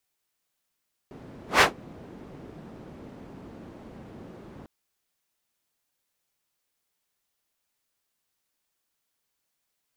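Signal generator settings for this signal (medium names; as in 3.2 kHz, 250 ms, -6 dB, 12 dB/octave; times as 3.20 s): whoosh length 3.55 s, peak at 0.50 s, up 0.15 s, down 0.14 s, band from 260 Hz, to 1.5 kHz, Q 0.89, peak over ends 29 dB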